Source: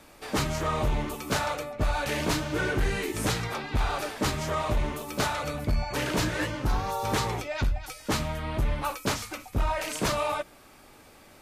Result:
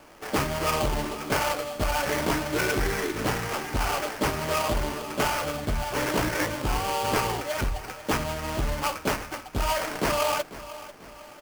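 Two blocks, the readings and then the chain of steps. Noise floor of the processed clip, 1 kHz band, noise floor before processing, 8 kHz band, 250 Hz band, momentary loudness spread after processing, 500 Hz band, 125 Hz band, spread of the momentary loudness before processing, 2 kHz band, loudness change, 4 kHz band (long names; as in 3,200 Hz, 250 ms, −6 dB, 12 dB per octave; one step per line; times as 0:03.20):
−46 dBFS, +3.0 dB, −53 dBFS, +2.0 dB, +1.0 dB, 6 LU, +3.0 dB, −2.0 dB, 4 LU, +2.5 dB, +2.0 dB, +2.0 dB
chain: bass and treble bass −6 dB, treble −6 dB
sample-rate reduction 3,800 Hz, jitter 20%
on a send: repeating echo 494 ms, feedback 47%, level −16 dB
on the sum: level +3.5 dB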